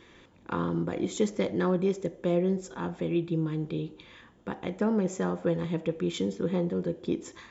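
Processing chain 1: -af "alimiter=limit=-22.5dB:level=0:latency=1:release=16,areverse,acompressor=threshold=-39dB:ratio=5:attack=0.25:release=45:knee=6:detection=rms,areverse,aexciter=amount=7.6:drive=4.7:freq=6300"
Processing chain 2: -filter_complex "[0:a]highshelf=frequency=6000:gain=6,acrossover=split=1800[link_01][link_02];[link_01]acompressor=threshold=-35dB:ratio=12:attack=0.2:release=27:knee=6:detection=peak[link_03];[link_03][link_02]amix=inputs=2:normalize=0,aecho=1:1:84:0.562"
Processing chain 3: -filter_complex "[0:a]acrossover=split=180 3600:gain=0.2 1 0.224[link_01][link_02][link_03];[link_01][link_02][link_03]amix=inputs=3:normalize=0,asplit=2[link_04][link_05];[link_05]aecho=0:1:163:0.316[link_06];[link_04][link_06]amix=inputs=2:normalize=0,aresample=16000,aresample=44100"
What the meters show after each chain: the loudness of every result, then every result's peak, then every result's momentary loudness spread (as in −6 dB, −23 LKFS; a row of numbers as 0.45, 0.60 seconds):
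−41.5, −38.5, −31.0 LKFS; −23.0, −22.5, −15.0 dBFS; 11, 7, 9 LU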